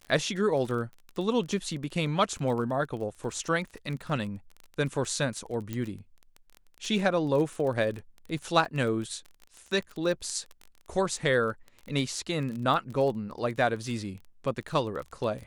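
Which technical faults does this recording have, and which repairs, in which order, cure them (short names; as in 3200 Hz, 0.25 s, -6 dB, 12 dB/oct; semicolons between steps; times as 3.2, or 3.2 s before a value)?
crackle 26/s -34 dBFS
5.73 pop -20 dBFS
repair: de-click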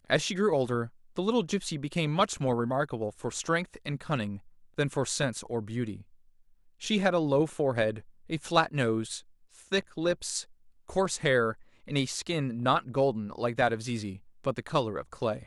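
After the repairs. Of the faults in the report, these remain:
none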